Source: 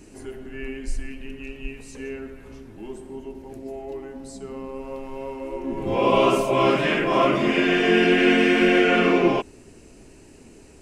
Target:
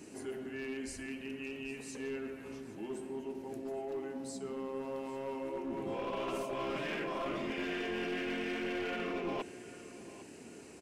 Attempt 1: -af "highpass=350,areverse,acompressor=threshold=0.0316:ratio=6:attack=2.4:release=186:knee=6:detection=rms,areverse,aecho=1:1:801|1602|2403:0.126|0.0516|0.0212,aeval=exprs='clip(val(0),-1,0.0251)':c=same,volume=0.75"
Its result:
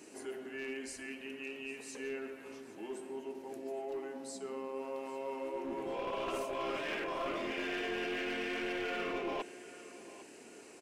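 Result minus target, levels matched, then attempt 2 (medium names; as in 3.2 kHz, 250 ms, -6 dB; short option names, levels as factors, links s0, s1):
125 Hz band -7.5 dB
-af "highpass=150,areverse,acompressor=threshold=0.0316:ratio=6:attack=2.4:release=186:knee=6:detection=rms,areverse,aecho=1:1:801|1602|2403:0.126|0.0516|0.0212,aeval=exprs='clip(val(0),-1,0.0251)':c=same,volume=0.75"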